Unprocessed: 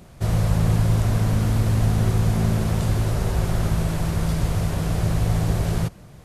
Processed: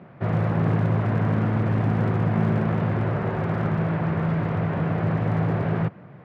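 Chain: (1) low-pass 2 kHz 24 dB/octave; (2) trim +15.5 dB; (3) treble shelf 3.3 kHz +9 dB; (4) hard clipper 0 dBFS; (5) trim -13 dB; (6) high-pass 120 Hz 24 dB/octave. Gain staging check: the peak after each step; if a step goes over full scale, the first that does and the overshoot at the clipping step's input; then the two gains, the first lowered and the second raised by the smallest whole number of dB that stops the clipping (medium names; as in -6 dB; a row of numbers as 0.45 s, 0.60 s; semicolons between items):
-8.0 dBFS, +7.5 dBFS, +7.5 dBFS, 0.0 dBFS, -13.0 dBFS, -11.0 dBFS; step 2, 7.5 dB; step 2 +7.5 dB, step 5 -5 dB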